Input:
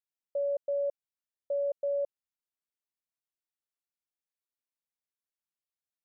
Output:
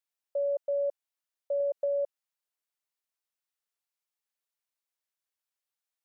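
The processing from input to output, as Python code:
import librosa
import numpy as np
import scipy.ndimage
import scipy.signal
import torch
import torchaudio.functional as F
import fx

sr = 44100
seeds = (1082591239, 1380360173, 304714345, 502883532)

y = scipy.signal.sosfilt(scipy.signal.butter(2, 510.0, 'highpass', fs=sr, output='sos'), x)
y = fx.band_squash(y, sr, depth_pct=100, at=(1.6, 2.0))
y = F.gain(torch.from_numpy(y), 3.5).numpy()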